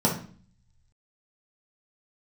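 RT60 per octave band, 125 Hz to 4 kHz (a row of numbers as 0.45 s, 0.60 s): 1.3 s, 0.75 s, 0.45 s, 0.45 s, 0.40 s, 0.40 s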